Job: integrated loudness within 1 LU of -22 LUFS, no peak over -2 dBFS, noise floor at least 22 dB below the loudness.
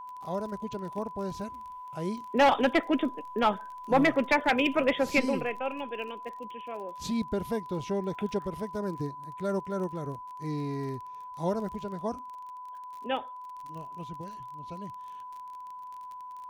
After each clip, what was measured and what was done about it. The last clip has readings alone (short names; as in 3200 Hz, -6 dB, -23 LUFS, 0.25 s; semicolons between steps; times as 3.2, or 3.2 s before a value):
ticks 33/s; steady tone 1000 Hz; tone level -40 dBFS; loudness -30.5 LUFS; peak -14.5 dBFS; loudness target -22.0 LUFS
-> de-click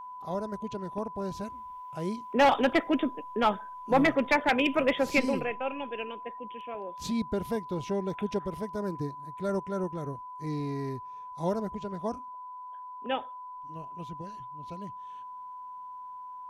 ticks 0.061/s; steady tone 1000 Hz; tone level -40 dBFS
-> notch 1000 Hz, Q 30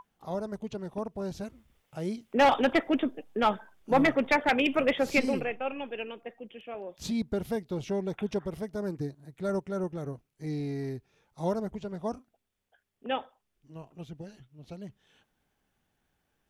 steady tone none; loudness -30.5 LUFS; peak -12.5 dBFS; loudness target -22.0 LUFS
-> gain +8.5 dB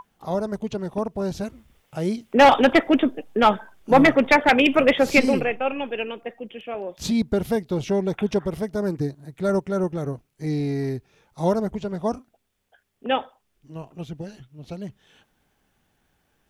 loudness -22.0 LUFS; peak -4.0 dBFS; noise floor -71 dBFS